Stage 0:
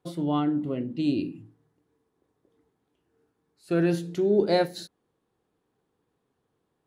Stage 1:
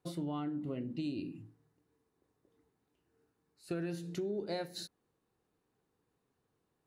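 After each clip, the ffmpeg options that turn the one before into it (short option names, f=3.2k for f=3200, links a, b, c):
-af "equalizer=f=470:w=0.34:g=-3.5,bandreject=f=3.3k:w=12,acompressor=threshold=-32dB:ratio=12,volume=-2dB"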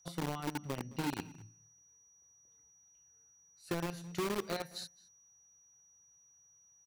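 -filter_complex "[0:a]aeval=exprs='val(0)+0.000708*sin(2*PI*5800*n/s)':c=same,acrossover=split=190|600|4200[a][b][c][d];[b]acrusher=bits=5:mix=0:aa=0.000001[e];[a][e][c][d]amix=inputs=4:normalize=0,asplit=2[f][g];[g]adelay=215.7,volume=-21dB,highshelf=f=4k:g=-4.85[h];[f][h]amix=inputs=2:normalize=0"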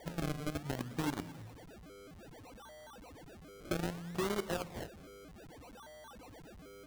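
-af "aeval=exprs='val(0)+0.5*0.00335*sgn(val(0))':c=same,acrusher=samples=33:mix=1:aa=0.000001:lfo=1:lforange=33:lforate=0.63,aeval=exprs='val(0)+0.000447*(sin(2*PI*60*n/s)+sin(2*PI*2*60*n/s)/2+sin(2*PI*3*60*n/s)/3+sin(2*PI*4*60*n/s)/4+sin(2*PI*5*60*n/s)/5)':c=same"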